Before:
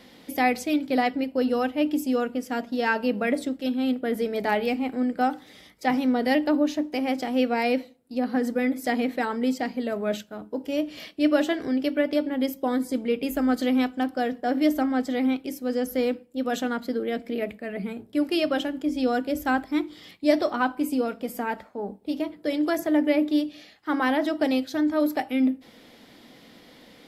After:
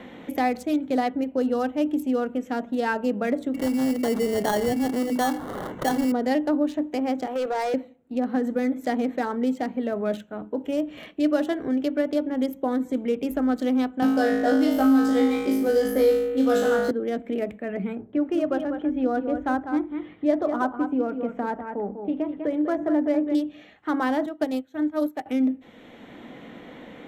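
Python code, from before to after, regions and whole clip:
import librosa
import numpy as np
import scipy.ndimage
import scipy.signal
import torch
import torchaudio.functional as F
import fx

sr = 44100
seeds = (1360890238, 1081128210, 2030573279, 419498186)

y = fx.chain(x, sr, fx.hum_notches(base_hz=50, count=5),
    fx.sample_hold(seeds[0], rate_hz=2500.0, jitter_pct=0),
    fx.env_flatten(amount_pct=50), at=(3.54, 6.12))
y = fx.chain(y, sr, fx.highpass(hz=370.0, slope=24),
    fx.level_steps(step_db=10),
    fx.leveller(passes=2), at=(7.26, 7.74))
y = fx.chain(y, sr, fx.doubler(ms=14.0, db=-4),
    fx.room_flutter(wall_m=3.2, rt60_s=0.83),
    fx.band_squash(depth_pct=70), at=(14.02, 16.91))
y = fx.chain(y, sr, fx.lowpass(hz=1800.0, slope=12),
    fx.echo_single(ms=197, db=-8.5), at=(17.95, 23.35))
y = fx.chain(y, sr, fx.highpass(hz=46.0, slope=12),
    fx.high_shelf(hz=8500.0, db=10.5),
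    fx.upward_expand(threshold_db=-31.0, expansion=2.5), at=(24.26, 25.26))
y = fx.wiener(y, sr, points=9)
y = fx.dynamic_eq(y, sr, hz=2400.0, q=1.4, threshold_db=-45.0, ratio=4.0, max_db=-7)
y = fx.band_squash(y, sr, depth_pct=40)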